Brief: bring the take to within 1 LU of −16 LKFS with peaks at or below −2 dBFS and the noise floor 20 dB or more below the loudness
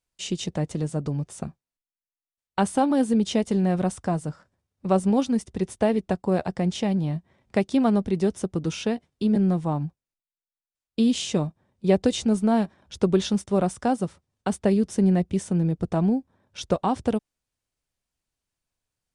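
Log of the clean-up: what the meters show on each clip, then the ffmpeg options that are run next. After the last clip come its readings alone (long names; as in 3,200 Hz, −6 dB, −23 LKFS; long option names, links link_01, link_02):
integrated loudness −25.0 LKFS; sample peak −8.0 dBFS; target loudness −16.0 LKFS
→ -af "volume=9dB,alimiter=limit=-2dB:level=0:latency=1"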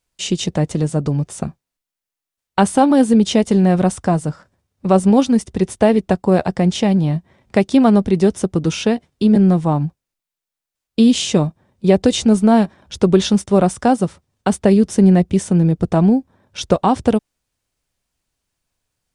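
integrated loudness −16.0 LKFS; sample peak −2.0 dBFS; background noise floor −86 dBFS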